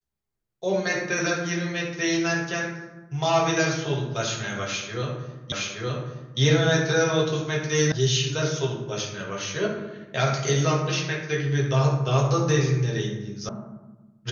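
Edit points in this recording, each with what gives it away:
0:05.52: the same again, the last 0.87 s
0:07.92: cut off before it has died away
0:13.49: cut off before it has died away

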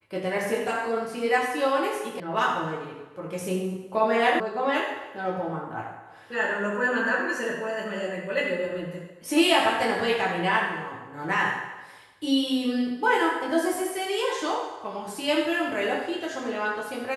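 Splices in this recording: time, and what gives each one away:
0:02.20: cut off before it has died away
0:04.40: cut off before it has died away

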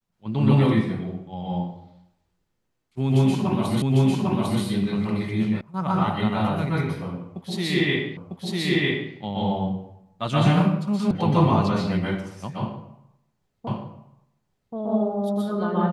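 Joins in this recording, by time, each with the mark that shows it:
0:03.82: the same again, the last 0.8 s
0:05.61: cut off before it has died away
0:08.17: the same again, the last 0.95 s
0:11.11: cut off before it has died away
0:13.67: the same again, the last 1.08 s

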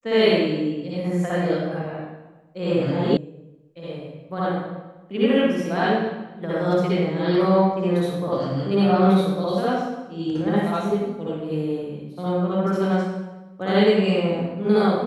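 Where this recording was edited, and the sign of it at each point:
0:03.17: cut off before it has died away

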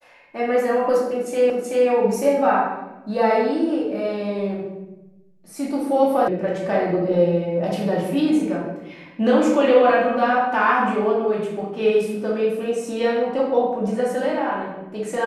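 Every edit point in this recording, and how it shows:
0:01.50: the same again, the last 0.38 s
0:06.28: cut off before it has died away

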